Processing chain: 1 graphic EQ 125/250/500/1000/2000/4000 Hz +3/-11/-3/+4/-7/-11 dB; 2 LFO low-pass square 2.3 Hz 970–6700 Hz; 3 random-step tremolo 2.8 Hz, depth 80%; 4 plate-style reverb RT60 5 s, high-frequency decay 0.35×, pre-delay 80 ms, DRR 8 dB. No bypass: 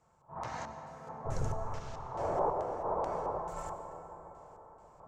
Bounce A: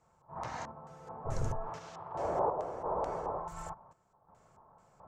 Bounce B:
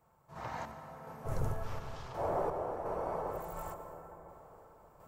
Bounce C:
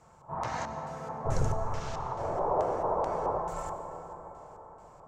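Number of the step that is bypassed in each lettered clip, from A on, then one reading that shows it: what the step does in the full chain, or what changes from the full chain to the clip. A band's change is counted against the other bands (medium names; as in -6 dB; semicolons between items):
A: 4, momentary loudness spread change -4 LU; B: 2, 8 kHz band -3.5 dB; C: 3, momentary loudness spread change -1 LU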